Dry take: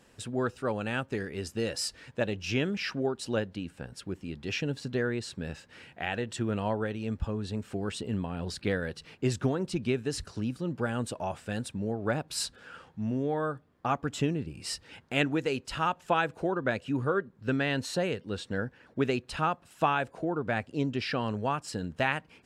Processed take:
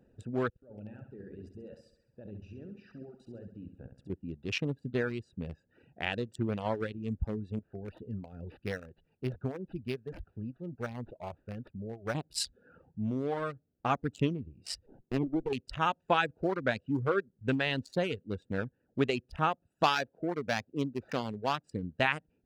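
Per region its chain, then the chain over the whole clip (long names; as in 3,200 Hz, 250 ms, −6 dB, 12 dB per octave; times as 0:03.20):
0:00.49–0:04.10: output level in coarse steps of 22 dB + flutter between parallel walls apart 11.5 metres, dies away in 1 s
0:07.59–0:12.15: parametric band 240 Hz −6.5 dB 3 octaves + notch filter 300 Hz, Q 9.2 + linearly interpolated sample-rate reduction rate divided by 6×
0:14.86–0:15.53: treble cut that deepens with the level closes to 450 Hz, closed at −24 dBFS + loudspeaker in its box 150–7,200 Hz, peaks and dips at 370 Hz +7 dB, 560 Hz −8 dB, 1,700 Hz −7 dB + windowed peak hold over 17 samples
0:19.83–0:21.64: running median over 15 samples + high-pass filter 160 Hz 6 dB per octave + dynamic equaliser 3,700 Hz, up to +7 dB, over −47 dBFS, Q 0.83
whole clip: adaptive Wiener filter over 41 samples; reverb reduction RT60 0.8 s; dynamic equaliser 3,800 Hz, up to +4 dB, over −49 dBFS, Q 0.93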